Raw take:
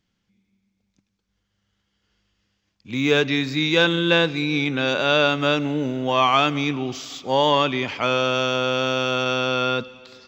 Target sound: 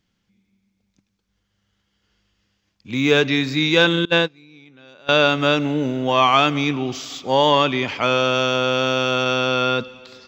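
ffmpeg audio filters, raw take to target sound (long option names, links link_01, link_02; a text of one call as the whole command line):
ffmpeg -i in.wav -filter_complex "[0:a]asettb=1/sr,asplit=3[link_01][link_02][link_03];[link_01]atrim=end=4.054[link_04];[link_02]atrim=start=4.05:end=5.09,asetpts=PTS-STARTPTS,afade=type=in:duration=0.004:curve=qsin,afade=type=out:start_time=1.036:duration=0.004:curve=qsin,agate=range=-27dB:threshold=-16dB:ratio=16:detection=peak[link_05];[link_03]atrim=start=5.086[link_06];[link_04][link_05]acrossfade=duration=0.004:curve1=hsin:curve2=qsin[link_07];[link_07][link_06]acrossfade=duration=0.004:curve1=qsin:curve2=hsin,volume=2.5dB" out.wav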